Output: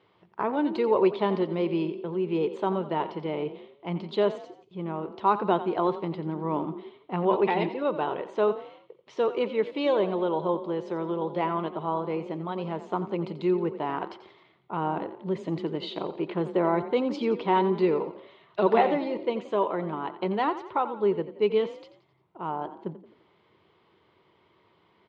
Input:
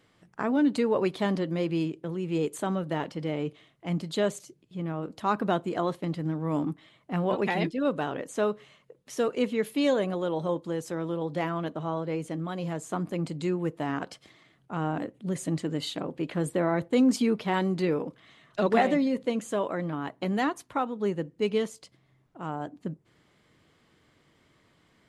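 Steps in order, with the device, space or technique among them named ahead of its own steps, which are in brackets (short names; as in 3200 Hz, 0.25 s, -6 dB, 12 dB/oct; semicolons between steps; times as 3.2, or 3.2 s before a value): frequency-shifting delay pedal into a guitar cabinet (frequency-shifting echo 87 ms, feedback 45%, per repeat +31 Hz, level -13.5 dB; speaker cabinet 93–3900 Hz, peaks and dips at 140 Hz -6 dB, 260 Hz -10 dB, 380 Hz +8 dB, 950 Hz +9 dB, 1700 Hz -6 dB)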